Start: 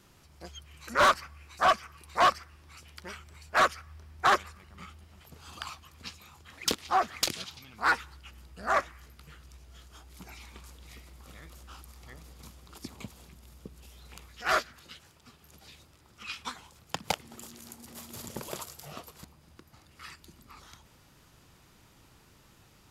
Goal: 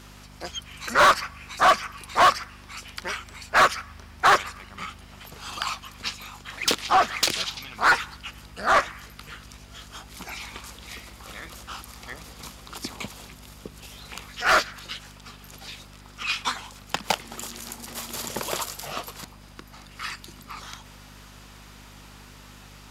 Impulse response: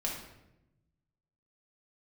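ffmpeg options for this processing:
-filter_complex "[0:a]aeval=exprs='val(0)+0.00355*(sin(2*PI*50*n/s)+sin(2*PI*2*50*n/s)/2+sin(2*PI*3*50*n/s)/3+sin(2*PI*4*50*n/s)/4+sin(2*PI*5*50*n/s)/5)':c=same,asplit=2[a][b];[b]highpass=f=720:p=1,volume=14dB,asoftclip=type=tanh:threshold=-17dB[c];[a][c]amix=inputs=2:normalize=0,lowpass=f=7k:p=1,volume=-6dB,volume=5dB"

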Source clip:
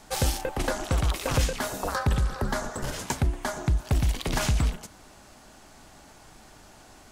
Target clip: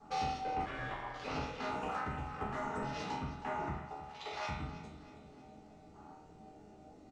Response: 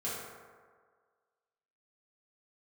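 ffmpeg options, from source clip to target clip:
-filter_complex "[0:a]acompressor=threshold=-32dB:ratio=16,asettb=1/sr,asplit=3[a][b][c];[a]atrim=end=3.864[d];[b]atrim=start=3.86:end=4.49,asetpts=PTS-STARTPTS,afade=t=in:d=0.004:c=qsin,afade=t=out:st=0.626:d=0.004:c=qsin,highpass=f=450:w=0.5412,highpass=f=450:w=1.3066[e];[c]atrim=start=4.486[f];[d][e]acrossfade=d=0.004:c1=hsin:c2=qsin[g];[g][f]acrossfade=d=0.004:c1=qsin:c2=hsin,aeval=exprs='0.0473*(abs(mod(val(0)/0.0473+3,4)-2)-1)':c=same,lowpass=f=7.9k:w=0.5412,lowpass=f=7.9k:w=1.3066,afwtdn=0.00447,asettb=1/sr,asplit=3[h][i][j];[h]atrim=end=1.824[k];[i]atrim=start=1.82:end=2.78,asetpts=PTS-STARTPTS,afade=t=in:d=0.004:c=qsin,afade=t=out:st=0.956:d=0.004:c=qsin,highshelf=f=4.9k:g=10[l];[j]atrim=start=2.776[m];[k][l]acrossfade=d=0.004:c1=hsin:c2=qsin[n];[n][m]acrossfade=d=0.004:c1=qsin:c2=hsin[o];[1:a]atrim=start_sample=2205,afade=t=out:st=0.44:d=0.01,atrim=end_sample=19845,asetrate=79380,aresample=44100[p];[o][p]afir=irnorm=-1:irlink=0,asplit=3[q][r][s];[q]afade=t=out:st=0.65:d=0.02[t];[r]aeval=exprs='val(0)*sin(2*PI*890*n/s)':c=same,afade=t=in:st=0.65:d=0.02,afade=t=out:st=1.23:d=0.02[u];[s]afade=t=in:st=1.23:d=0.02[v];[t][u][v]amix=inputs=3:normalize=0,aecho=1:1:318|636|954|1272|1590:0.188|0.0942|0.0471|0.0235|0.0118"

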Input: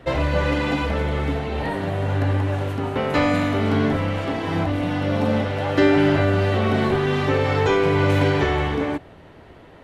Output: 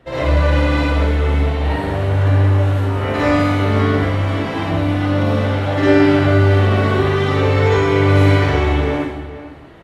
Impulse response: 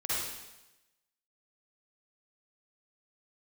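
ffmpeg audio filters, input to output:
-filter_complex "[0:a]asplit=2[a][b];[b]adelay=454.8,volume=-13dB,highshelf=f=4k:g=-10.2[c];[a][c]amix=inputs=2:normalize=0[d];[1:a]atrim=start_sample=2205,afade=t=out:st=0.37:d=0.01,atrim=end_sample=16758[e];[d][e]afir=irnorm=-1:irlink=0,volume=-2.5dB"

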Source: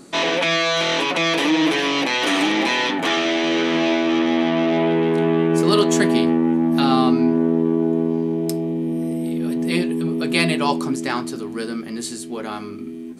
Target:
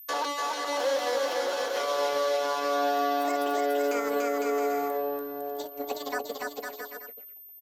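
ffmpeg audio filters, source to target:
-filter_complex "[0:a]highpass=f=49:w=0.5412,highpass=f=49:w=1.3066,lowshelf=f=100:g=-9,alimiter=limit=-11.5dB:level=0:latency=1:release=246,agate=range=-49dB:threshold=-21dB:ratio=16:detection=peak,aeval=exprs='val(0)+0.00708*sin(2*PI*7700*n/s)':c=same,tremolo=f=0.58:d=0.58,aecho=1:1:500|875|1156|1367|1525:0.631|0.398|0.251|0.158|0.1,acrossover=split=110|710|2000[a][b][c][d];[a]acompressor=threshold=-56dB:ratio=4[e];[b]acompressor=threshold=-25dB:ratio=4[f];[c]acompressor=threshold=-40dB:ratio=4[g];[d]acompressor=threshold=-44dB:ratio=4[h];[e][f][g][h]amix=inputs=4:normalize=0,asetrate=76440,aresample=44100"

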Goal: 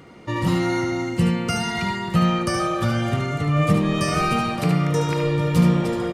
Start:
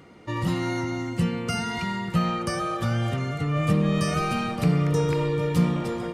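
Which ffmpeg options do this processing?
-filter_complex "[0:a]asettb=1/sr,asplit=3[a][b][c];[a]atrim=end=4.594[d];[b]atrim=start=4.59:end=5.24,asetpts=PTS-STARTPTS,afade=t=in:d=0.004:c=qsin,afade=t=out:st=0.646:d=0.004:c=qsin,lowshelf=f=120:g=-11.5[e];[c]atrim=start=5.236[f];[d][e]acrossfade=d=0.004:c1=hsin:c2=qsin[g];[g][f]acrossfade=d=0.004:c1=qsin:c2=hsin,aecho=1:1:74:0.501,volume=4dB"

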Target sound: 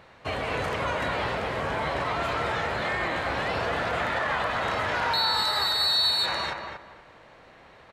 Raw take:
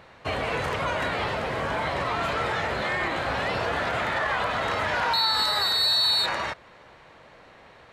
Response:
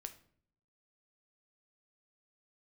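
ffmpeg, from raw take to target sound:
-filter_complex "[0:a]asplit=2[a][b];[b]adelay=236,lowpass=f=2.5k:p=1,volume=-5dB,asplit=2[c][d];[d]adelay=236,lowpass=f=2.5k:p=1,volume=0.25,asplit=2[e][f];[f]adelay=236,lowpass=f=2.5k:p=1,volume=0.25[g];[a][c][e][g]amix=inputs=4:normalize=0,volume=-2dB"

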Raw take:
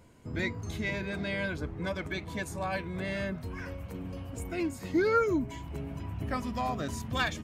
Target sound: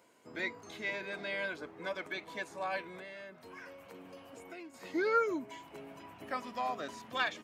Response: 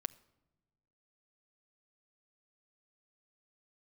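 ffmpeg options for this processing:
-filter_complex "[0:a]acrossover=split=4900[a][b];[b]acompressor=threshold=-59dB:ratio=4:attack=1:release=60[c];[a][c]amix=inputs=2:normalize=0,highpass=420,asettb=1/sr,asplit=3[d][e][f];[d]atrim=end=2.954[g];[e]atrim=start=2.95:end=4.74,asetpts=PTS-STARTPTS,afade=t=in:d=0.004:c=qsin,afade=t=out:st=1.786:d=0.004:c=qsin,acompressor=threshold=-44dB:ratio=5[h];[f]atrim=start=4.736[i];[g][h]acrossfade=d=0.004:c1=hsin:c2=qsin[j];[j][i]acrossfade=d=0.004:c1=qsin:c2=hsin,volume=-2dB"

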